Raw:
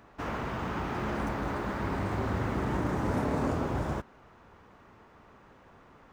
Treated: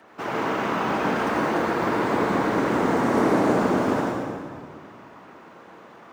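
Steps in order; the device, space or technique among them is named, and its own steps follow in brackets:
whispering ghost (random phases in short frames; high-pass filter 230 Hz 12 dB per octave; convolution reverb RT60 1.9 s, pre-delay 76 ms, DRR −2.5 dB)
level +6 dB

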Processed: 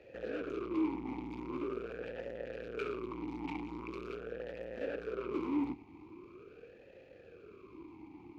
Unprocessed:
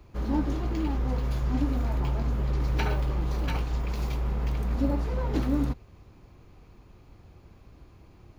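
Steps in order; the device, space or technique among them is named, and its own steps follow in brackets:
talk box (tube saturation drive 40 dB, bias 0.6; formant filter swept between two vowels e-u 0.43 Hz)
level +17.5 dB

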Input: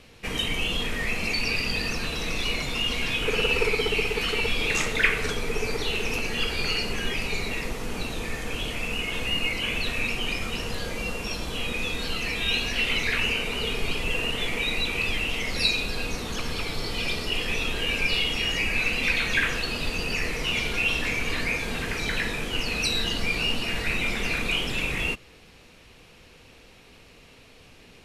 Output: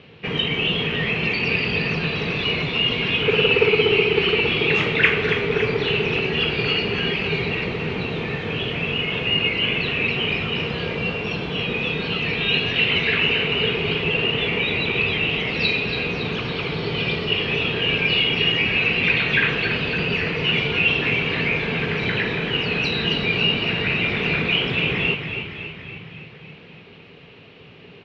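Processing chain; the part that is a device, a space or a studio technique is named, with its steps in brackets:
frequency-shifting delay pedal into a guitar cabinet (echo with shifted repeats 279 ms, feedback 61%, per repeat −34 Hz, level −8 dB; loudspeaker in its box 99–3,600 Hz, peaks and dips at 110 Hz +6 dB, 160 Hz +10 dB, 410 Hz +7 dB, 2,900 Hz +4 dB)
level +3.5 dB

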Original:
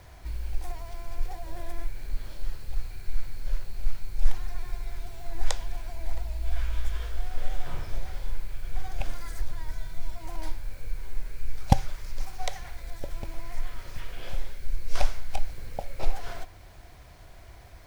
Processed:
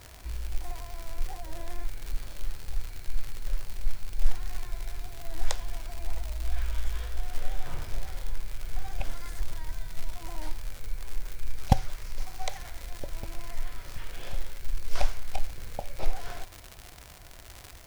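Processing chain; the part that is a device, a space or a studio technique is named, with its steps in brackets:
vinyl LP (tape wow and flutter; surface crackle 130 per second −29 dBFS; white noise bed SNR 37 dB)
level −1.5 dB

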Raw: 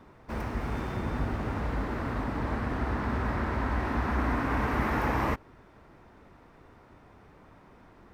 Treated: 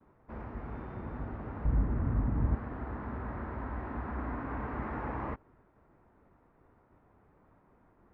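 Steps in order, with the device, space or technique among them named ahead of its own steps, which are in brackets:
hearing-loss simulation (low-pass filter 1,600 Hz 12 dB per octave; downward expander −53 dBFS)
0:01.65–0:02.55: bass and treble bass +14 dB, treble −9 dB
level −8.5 dB

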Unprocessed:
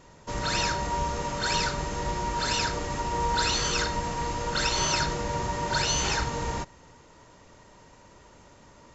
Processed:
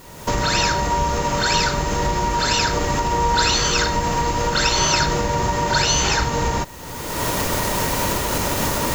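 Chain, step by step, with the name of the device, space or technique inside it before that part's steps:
cheap recorder with automatic gain (white noise bed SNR 29 dB; camcorder AGC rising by 32 dB per second)
level +8 dB

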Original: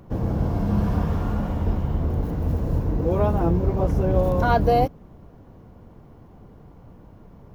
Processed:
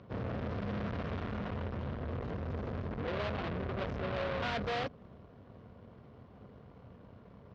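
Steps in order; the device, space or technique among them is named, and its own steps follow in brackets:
guitar amplifier (tube saturation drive 33 dB, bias 0.8; bass and treble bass −1 dB, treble +9 dB; loudspeaker in its box 89–3,800 Hz, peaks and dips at 160 Hz −6 dB, 320 Hz −9 dB, 840 Hz −7 dB)
level +2 dB

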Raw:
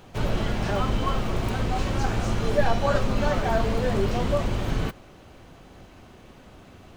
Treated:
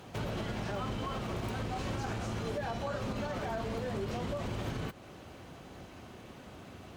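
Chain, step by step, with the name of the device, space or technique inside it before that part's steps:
podcast mastering chain (high-pass filter 69 Hz 12 dB per octave; downward compressor 2.5 to 1, threshold −34 dBFS, peak gain reduction 11.5 dB; brickwall limiter −27 dBFS, peak gain reduction 6 dB; MP3 96 kbit/s 44,100 Hz)

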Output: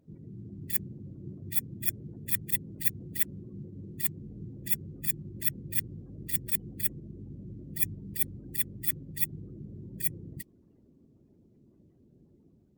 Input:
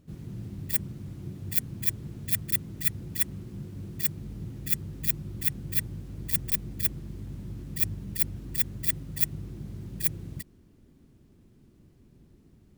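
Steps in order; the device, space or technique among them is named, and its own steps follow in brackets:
noise-suppressed video call (high-pass filter 170 Hz 6 dB per octave; gate on every frequency bin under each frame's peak −25 dB strong; automatic gain control gain up to 3 dB; level −2.5 dB; Opus 32 kbit/s 48,000 Hz)

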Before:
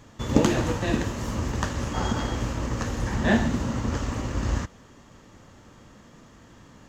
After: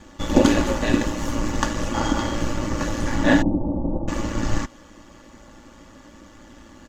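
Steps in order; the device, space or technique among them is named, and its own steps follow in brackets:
0:03.42–0:04.08: elliptic low-pass filter 820 Hz, stop band 60 dB
ring-modulated robot voice (ring modulation 56 Hz; comb filter 3.5 ms, depth 68%)
level +6 dB

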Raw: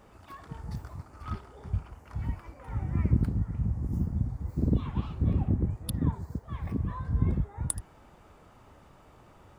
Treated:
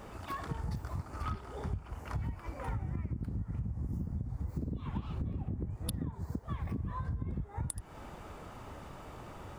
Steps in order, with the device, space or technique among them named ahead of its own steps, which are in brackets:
serial compression, leveller first (downward compressor 3 to 1, threshold −29 dBFS, peak gain reduction 9 dB; downward compressor 10 to 1, threshold −41 dBFS, peak gain reduction 16 dB)
level +8 dB

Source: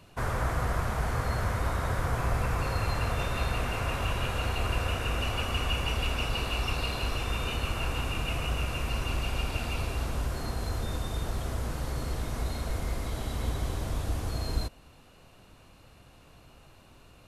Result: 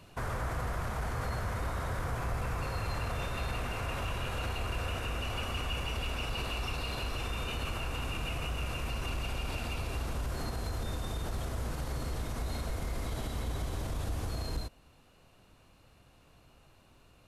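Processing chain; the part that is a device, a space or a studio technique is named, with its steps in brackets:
clipper into limiter (hard clipping −21 dBFS, distortion −27 dB; brickwall limiter −27 dBFS, peak gain reduction 6 dB)

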